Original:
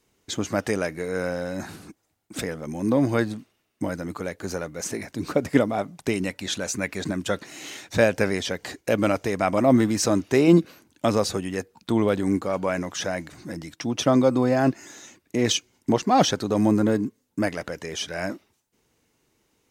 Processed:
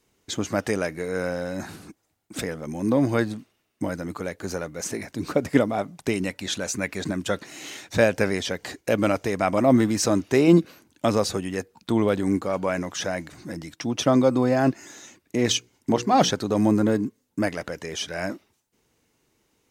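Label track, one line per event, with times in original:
15.460000	16.300000	hum notches 60/120/180/240/300/360/420/480 Hz

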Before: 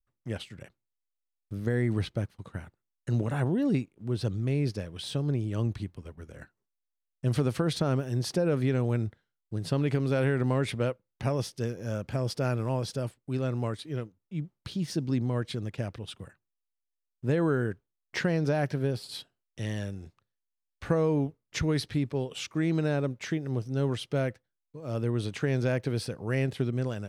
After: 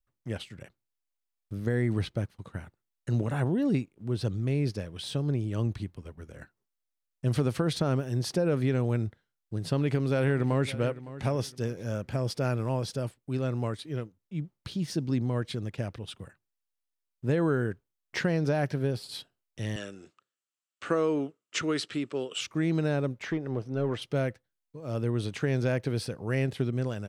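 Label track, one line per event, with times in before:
9.710000	10.800000	echo throw 560 ms, feedback 30%, level -16 dB
19.760000	22.410000	cabinet simulation 280–9500 Hz, peaks and dips at 340 Hz +4 dB, 840 Hz -5 dB, 1.3 kHz +9 dB, 2.9 kHz +7 dB, 7.6 kHz +9 dB
23.220000	24.020000	overdrive pedal drive 14 dB, tone 1 kHz, clips at -18 dBFS

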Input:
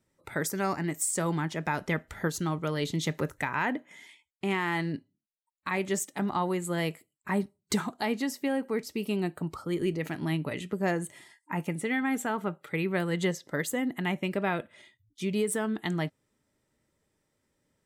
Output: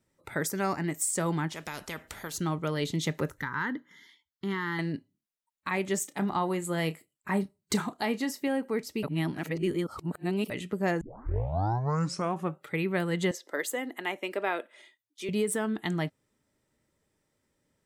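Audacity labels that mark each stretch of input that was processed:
1.530000	2.340000	spectrum-flattening compressor 2:1
3.400000	4.790000	static phaser centre 2.5 kHz, stages 6
6.010000	8.480000	doubling 31 ms -14 dB
9.030000	10.500000	reverse
11.010000	11.010000	tape start 1.61 s
13.310000	15.290000	high-pass 320 Hz 24 dB/octave

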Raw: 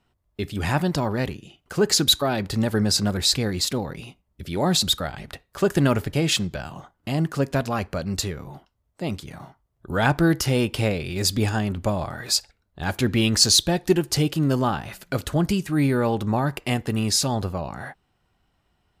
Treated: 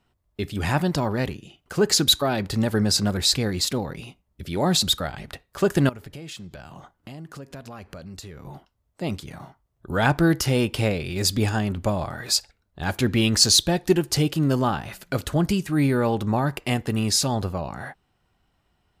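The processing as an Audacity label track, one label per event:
5.890000	8.450000	compression 4:1, threshold -38 dBFS

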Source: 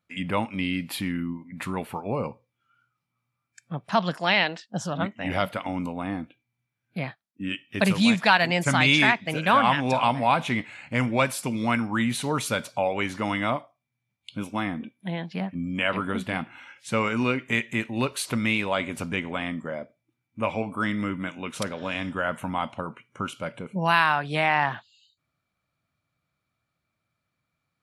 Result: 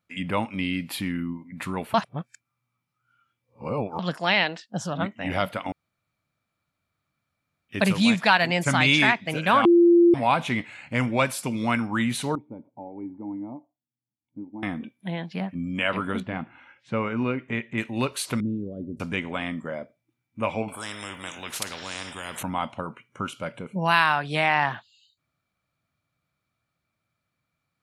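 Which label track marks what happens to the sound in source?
1.940000	3.990000	reverse
5.720000	7.690000	room tone
9.650000	10.140000	bleep 344 Hz -12 dBFS
12.350000	14.630000	cascade formant filter u
16.200000	17.780000	tape spacing loss at 10 kHz 30 dB
18.400000	19.000000	inverse Chebyshev low-pass stop band from 840 Hz
20.680000	22.430000	spectrum-flattening compressor 4:1
23.910000	24.720000	peaking EQ 6.3 kHz +3.5 dB 2 oct

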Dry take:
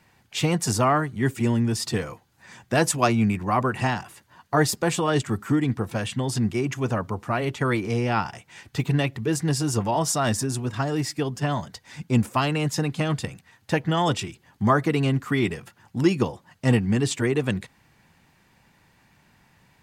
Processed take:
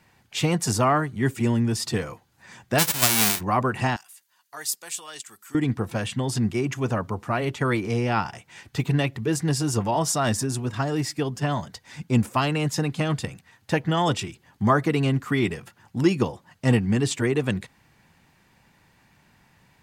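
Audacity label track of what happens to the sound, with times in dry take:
2.780000	3.390000	formants flattened exponent 0.1
3.960000	5.550000	differentiator

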